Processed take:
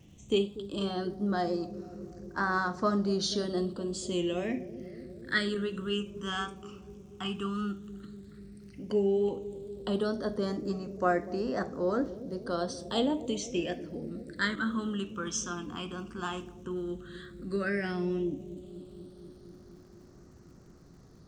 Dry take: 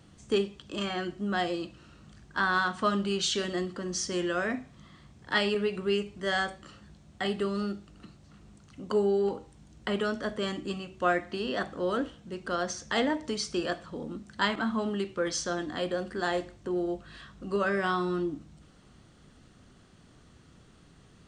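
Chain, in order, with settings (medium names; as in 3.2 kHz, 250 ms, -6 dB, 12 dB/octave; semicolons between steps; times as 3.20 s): phase shifter stages 8, 0.11 Hz, lowest notch 550–3100 Hz; wow and flutter 25 cents; crackle 240 per s -58 dBFS; on a send: bucket-brigade echo 241 ms, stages 1024, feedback 79%, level -14 dB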